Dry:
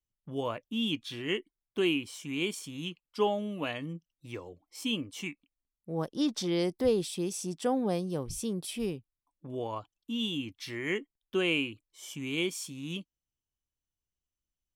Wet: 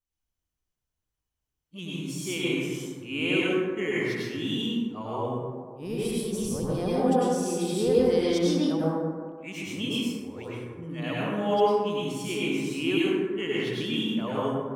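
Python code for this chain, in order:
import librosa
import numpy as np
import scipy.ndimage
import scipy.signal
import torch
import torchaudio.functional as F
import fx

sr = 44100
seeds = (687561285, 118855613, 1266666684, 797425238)

y = np.flip(x).copy()
y = fx.rev_plate(y, sr, seeds[0], rt60_s=1.7, hf_ratio=0.35, predelay_ms=85, drr_db=-7.5)
y = y * 10.0 ** (-2.5 / 20.0)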